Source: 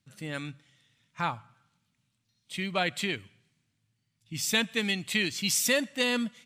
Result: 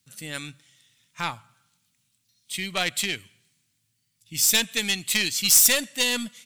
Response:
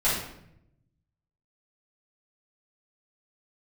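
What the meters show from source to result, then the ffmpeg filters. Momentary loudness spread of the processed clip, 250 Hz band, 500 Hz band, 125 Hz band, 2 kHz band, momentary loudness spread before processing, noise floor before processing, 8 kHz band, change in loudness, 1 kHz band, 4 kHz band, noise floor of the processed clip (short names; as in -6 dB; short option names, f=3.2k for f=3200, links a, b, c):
20 LU, -2.0 dB, -1.5 dB, -1.5 dB, +3.0 dB, 12 LU, -78 dBFS, +11.5 dB, +7.5 dB, 0.0 dB, +7.0 dB, -73 dBFS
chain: -af "aeval=exprs='0.237*(cos(1*acos(clip(val(0)/0.237,-1,1)))-cos(1*PI/2))+0.0668*(cos(4*acos(clip(val(0)/0.237,-1,1)))-cos(4*PI/2))+0.0119*(cos(5*acos(clip(val(0)/0.237,-1,1)))-cos(5*PI/2))+0.0188*(cos(6*acos(clip(val(0)/0.237,-1,1)))-cos(6*PI/2))':c=same,crystalizer=i=4.5:c=0,volume=-4dB"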